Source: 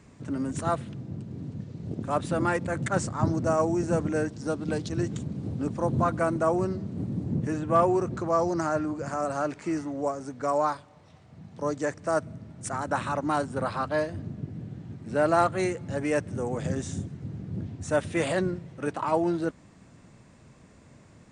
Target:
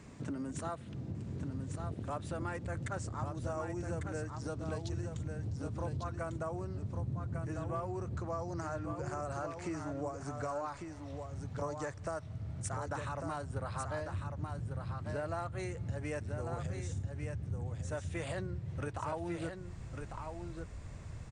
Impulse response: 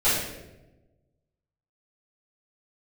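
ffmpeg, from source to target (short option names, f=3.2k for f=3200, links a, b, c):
-af "asubboost=boost=11.5:cutoff=66,acompressor=threshold=-38dB:ratio=6,aecho=1:1:1149:0.501,volume=1dB"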